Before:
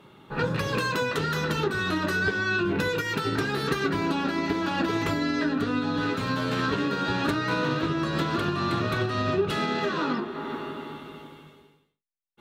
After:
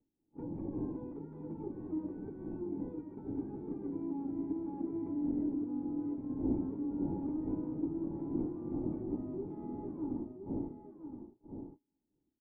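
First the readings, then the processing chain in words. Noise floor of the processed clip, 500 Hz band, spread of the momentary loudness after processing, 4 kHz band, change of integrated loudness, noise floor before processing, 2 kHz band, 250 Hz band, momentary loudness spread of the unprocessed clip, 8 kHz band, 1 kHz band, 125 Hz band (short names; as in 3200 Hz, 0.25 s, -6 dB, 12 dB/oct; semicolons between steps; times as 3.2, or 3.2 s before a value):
-83 dBFS, -14.5 dB, 11 LU, under -40 dB, -12.0 dB, -63 dBFS, under -40 dB, -7.0 dB, 5 LU, under -35 dB, -24.5 dB, -15.0 dB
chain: wind noise 320 Hz -29 dBFS; gate -28 dBFS, range -30 dB; vocal tract filter u; echo 1.019 s -8 dB; gain -6.5 dB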